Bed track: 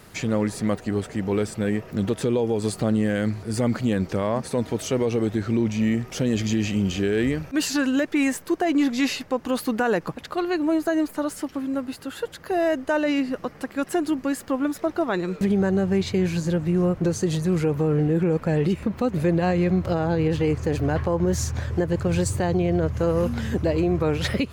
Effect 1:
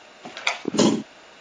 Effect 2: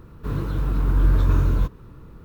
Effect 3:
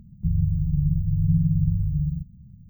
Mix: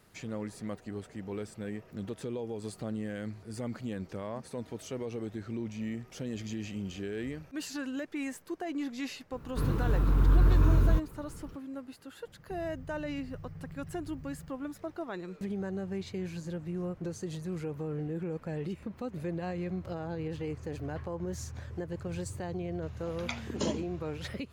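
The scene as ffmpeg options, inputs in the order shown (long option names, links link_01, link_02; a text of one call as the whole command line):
ffmpeg -i bed.wav -i cue0.wav -i cue1.wav -i cue2.wav -filter_complex "[0:a]volume=-14.5dB[link_01];[2:a]alimiter=limit=-11dB:level=0:latency=1:release=71[link_02];[3:a]acompressor=threshold=-31dB:ratio=6:attack=3.2:release=140:knee=1:detection=peak[link_03];[link_02]atrim=end=2.24,asetpts=PTS-STARTPTS,volume=-3.5dB,afade=type=in:duration=0.004:curve=hsin,afade=type=out:start_time=2.236:duration=0.004:curve=hsin,adelay=9320[link_04];[link_03]atrim=end=2.69,asetpts=PTS-STARTPTS,volume=-12dB,afade=type=in:duration=0.004:curve=hsin,afade=type=out:start_time=2.686:duration=0.004:curve=hsin,adelay=12270[link_05];[1:a]atrim=end=1.4,asetpts=PTS-STARTPTS,volume=-14.5dB,afade=type=in:duration=0.004:curve=hsin,afade=type=out:start_time=1.396:duration=0.004:curve=hsin,adelay=22820[link_06];[link_01][link_04][link_05][link_06]amix=inputs=4:normalize=0" out.wav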